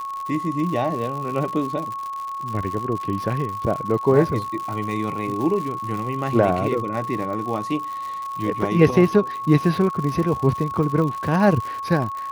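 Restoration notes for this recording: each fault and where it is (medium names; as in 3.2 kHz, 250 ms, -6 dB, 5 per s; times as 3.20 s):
crackle 130 per s -28 dBFS
whine 1.1 kHz -27 dBFS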